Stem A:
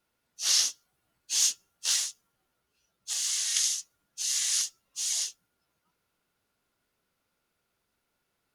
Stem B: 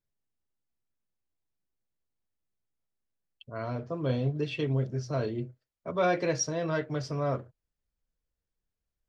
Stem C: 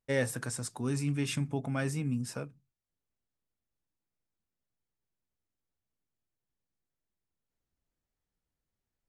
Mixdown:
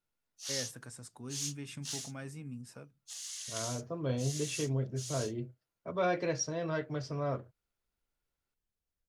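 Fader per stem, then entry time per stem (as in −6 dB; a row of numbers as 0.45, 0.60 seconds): −13.5, −4.5, −11.5 decibels; 0.00, 0.00, 0.40 seconds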